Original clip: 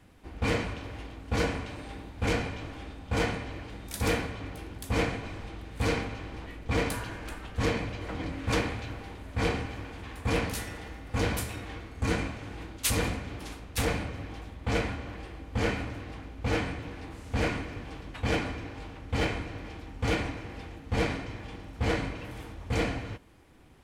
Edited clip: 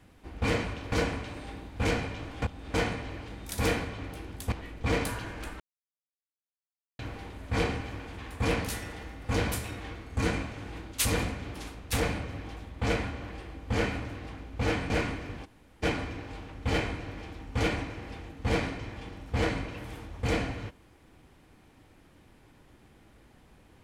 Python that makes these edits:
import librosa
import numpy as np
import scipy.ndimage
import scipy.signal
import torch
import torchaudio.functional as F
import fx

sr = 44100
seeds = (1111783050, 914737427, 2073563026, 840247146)

y = fx.edit(x, sr, fx.cut(start_s=0.92, length_s=0.42),
    fx.reverse_span(start_s=2.84, length_s=0.32),
    fx.cut(start_s=4.94, length_s=1.43),
    fx.silence(start_s=7.45, length_s=1.39),
    fx.cut(start_s=16.75, length_s=0.62),
    fx.room_tone_fill(start_s=17.92, length_s=0.38, crossfade_s=0.02), tone=tone)